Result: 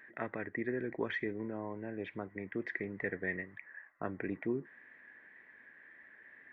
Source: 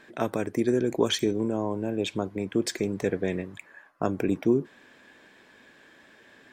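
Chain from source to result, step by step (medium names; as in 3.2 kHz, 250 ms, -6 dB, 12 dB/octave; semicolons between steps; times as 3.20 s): four-pole ladder low-pass 2 kHz, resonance 85%; wow and flutter 25 cents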